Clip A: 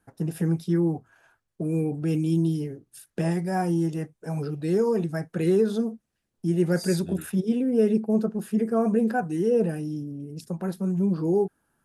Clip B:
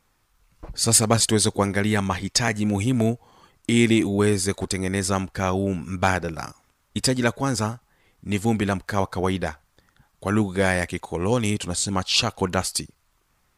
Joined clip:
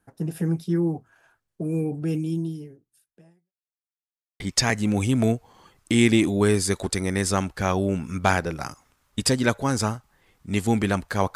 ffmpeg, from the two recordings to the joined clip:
-filter_complex "[0:a]apad=whole_dur=11.35,atrim=end=11.35,asplit=2[a][b];[a]atrim=end=3.53,asetpts=PTS-STARTPTS,afade=t=out:st=2.06:d=1.47:c=qua[c];[b]atrim=start=3.53:end=4.4,asetpts=PTS-STARTPTS,volume=0[d];[1:a]atrim=start=2.18:end=9.13,asetpts=PTS-STARTPTS,afade=t=in:d=0.004:c=hsin[e];[c][d][e]concat=n=3:v=0:a=1"

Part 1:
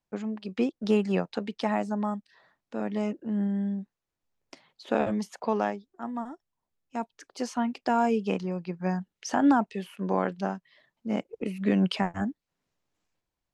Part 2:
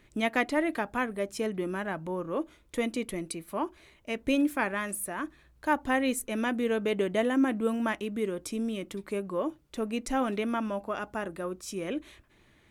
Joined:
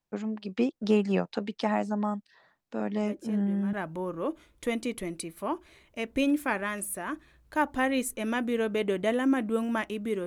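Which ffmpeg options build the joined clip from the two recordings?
-filter_complex "[1:a]asplit=2[a][b];[0:a]apad=whole_dur=10.26,atrim=end=10.26,atrim=end=3.732[c];[b]atrim=start=1.838:end=8.37[d];[a]atrim=start=1.09:end=1.84,asetpts=PTS-STARTPTS,volume=-12.5dB,afade=t=in:d=0.004:c=hsin,afade=t=out:st=0.746:d=0.004:c=hsin,adelay=2980[e];[c][d]acrossfade=d=0.004:c1=hsin:c2=hsin[f];[f][e]amix=inputs=2:normalize=0"

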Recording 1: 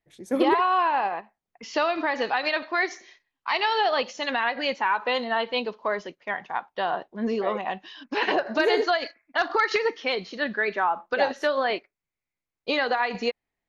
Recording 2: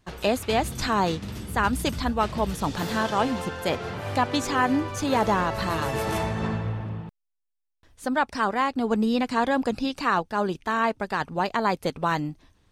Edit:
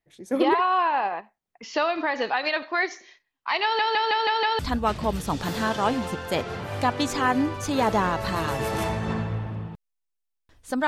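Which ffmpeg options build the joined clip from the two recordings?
-filter_complex "[0:a]apad=whole_dur=10.87,atrim=end=10.87,asplit=6[a][b][c][d][e][f];[a]atrim=end=3.792[g];[b]atrim=start=3.628:end=3.792[h];[c]atrim=start=3.628:end=3.792[i];[d]atrim=start=3.628:end=3.792[j];[e]atrim=start=3.628:end=3.792[k];[f]atrim=start=3.628:end=3.792[l];[1:a]atrim=start=1.928:end=8.21[m];[g][h]acrossfade=d=0.004:c1=hsin:c2=hsin[n];[n][i]acrossfade=d=0.004:c1=hsin:c2=hsin[o];[o][j]acrossfade=d=0.004:c1=hsin:c2=hsin[p];[p][k]acrossfade=d=0.004:c1=hsin:c2=hsin[q];[q][l]acrossfade=d=0.004:c1=hsin:c2=hsin[r];[r][m]acrossfade=d=0.004:c1=hsin:c2=hsin"

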